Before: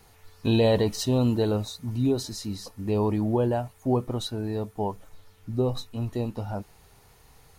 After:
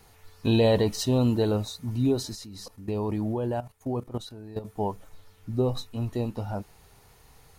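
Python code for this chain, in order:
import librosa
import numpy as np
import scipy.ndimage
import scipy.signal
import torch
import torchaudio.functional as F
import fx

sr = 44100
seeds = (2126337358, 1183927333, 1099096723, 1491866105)

y = fx.level_steps(x, sr, step_db=14, at=(2.35, 4.65))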